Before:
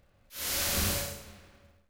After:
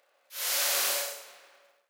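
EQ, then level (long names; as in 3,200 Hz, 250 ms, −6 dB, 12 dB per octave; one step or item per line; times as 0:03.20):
high-pass filter 500 Hz 24 dB per octave
+3.0 dB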